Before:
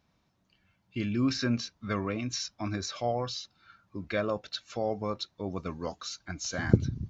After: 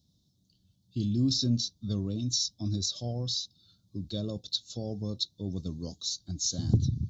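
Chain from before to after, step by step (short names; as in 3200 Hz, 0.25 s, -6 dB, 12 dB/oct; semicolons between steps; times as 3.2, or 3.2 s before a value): bell 110 Hz +11.5 dB 2.7 oct; soft clip -9 dBFS, distortion -10 dB; EQ curve 290 Hz 0 dB, 600 Hz -7 dB, 2200 Hz -28 dB, 3600 Hz +12 dB; gain -6 dB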